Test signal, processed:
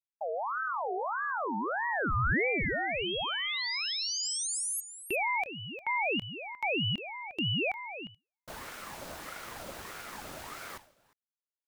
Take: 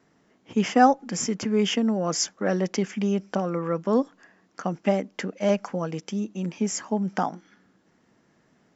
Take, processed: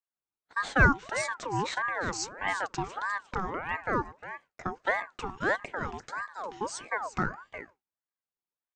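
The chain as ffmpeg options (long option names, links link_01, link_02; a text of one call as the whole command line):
ffmpeg -i in.wav -af "equalizer=frequency=760:width_type=o:width=0.77:gain=7,aecho=1:1:354:0.237,agate=range=-33dB:threshold=-37dB:ratio=3:detection=peak,aeval=exprs='val(0)*sin(2*PI*990*n/s+990*0.45/1.6*sin(2*PI*1.6*n/s))':channel_layout=same,volume=-6dB" out.wav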